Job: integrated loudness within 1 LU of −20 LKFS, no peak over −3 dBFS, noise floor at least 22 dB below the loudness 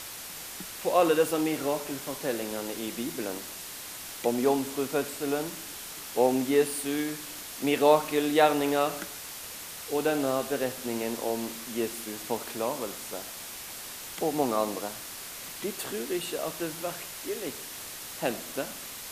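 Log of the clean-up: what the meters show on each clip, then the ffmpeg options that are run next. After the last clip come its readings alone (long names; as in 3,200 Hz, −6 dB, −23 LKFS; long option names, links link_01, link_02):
background noise floor −41 dBFS; target noise floor −52 dBFS; integrated loudness −30.0 LKFS; sample peak −8.0 dBFS; target loudness −20.0 LKFS
→ -af "afftdn=noise_reduction=11:noise_floor=-41"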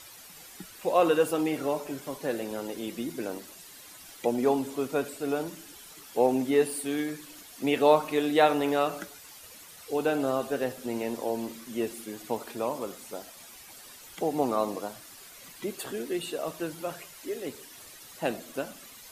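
background noise floor −49 dBFS; target noise floor −52 dBFS
→ -af "afftdn=noise_reduction=6:noise_floor=-49"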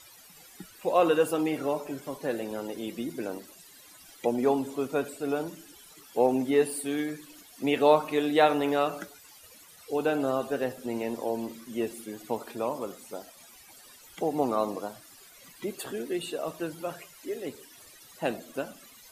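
background noise floor −53 dBFS; integrated loudness −29.5 LKFS; sample peak −8.0 dBFS; target loudness −20.0 LKFS
→ -af "volume=9.5dB,alimiter=limit=-3dB:level=0:latency=1"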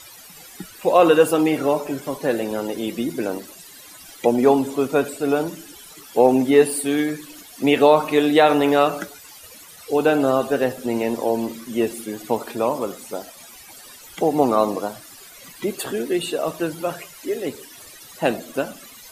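integrated loudness −20.5 LKFS; sample peak −3.0 dBFS; background noise floor −44 dBFS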